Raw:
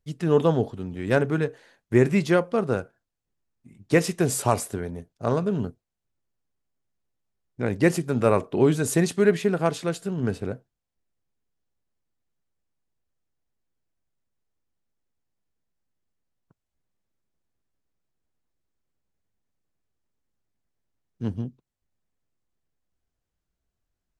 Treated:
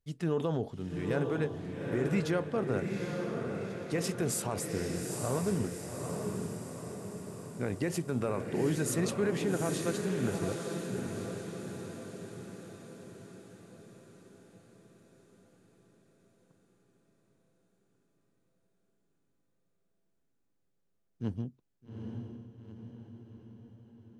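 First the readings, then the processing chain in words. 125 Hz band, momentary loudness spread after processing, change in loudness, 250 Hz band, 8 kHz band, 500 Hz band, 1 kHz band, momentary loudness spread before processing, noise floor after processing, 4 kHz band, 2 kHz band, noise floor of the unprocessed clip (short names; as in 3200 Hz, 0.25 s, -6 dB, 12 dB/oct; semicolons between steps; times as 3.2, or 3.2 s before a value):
-7.0 dB, 19 LU, -10.0 dB, -7.5 dB, -4.0 dB, -9.0 dB, -10.0 dB, 12 LU, -76 dBFS, -5.0 dB, -9.0 dB, -84 dBFS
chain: limiter -16 dBFS, peak gain reduction 10.5 dB; on a send: diffused feedback echo 0.829 s, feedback 56%, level -4 dB; on the sum: gain -6 dB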